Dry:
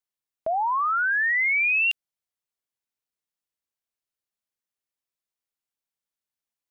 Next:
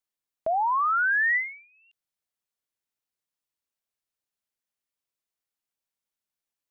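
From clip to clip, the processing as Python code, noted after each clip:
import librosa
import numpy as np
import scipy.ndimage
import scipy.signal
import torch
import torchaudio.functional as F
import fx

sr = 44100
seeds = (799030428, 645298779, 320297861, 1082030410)

y = fx.end_taper(x, sr, db_per_s=120.0)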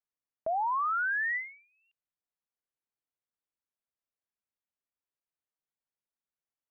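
y = scipy.signal.sosfilt(scipy.signal.butter(2, 1900.0, 'lowpass', fs=sr, output='sos'), x)
y = y * 10.0 ** (-5.0 / 20.0)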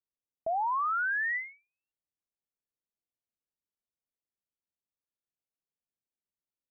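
y = fx.env_lowpass(x, sr, base_hz=550.0, full_db=-27.5)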